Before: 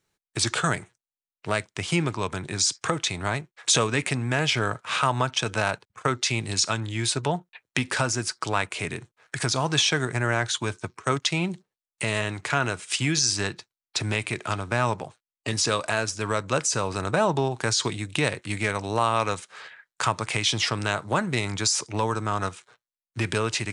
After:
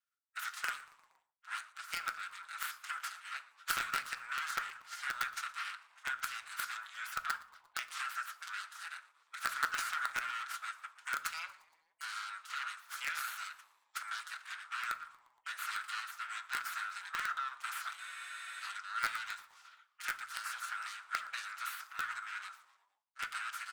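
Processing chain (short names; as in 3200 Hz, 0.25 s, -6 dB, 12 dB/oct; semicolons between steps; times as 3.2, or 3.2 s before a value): minimum comb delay 6 ms; spectral gate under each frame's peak -15 dB weak; ladder high-pass 1300 Hz, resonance 80%; high shelf 5600 Hz -5 dB; in parallel at -3 dB: bit-crush 5-bit; on the sum: frequency-shifting echo 0.117 s, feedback 57%, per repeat -120 Hz, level -21.5 dB; on a send at -11.5 dB: reverb, pre-delay 6 ms; on the sum: spectral freeze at 18.01, 0.60 s; gain +2.5 dB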